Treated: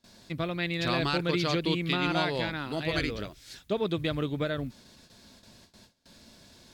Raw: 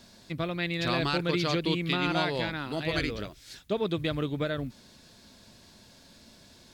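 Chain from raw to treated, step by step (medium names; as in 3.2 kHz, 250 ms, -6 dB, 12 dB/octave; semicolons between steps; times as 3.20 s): gate with hold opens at -44 dBFS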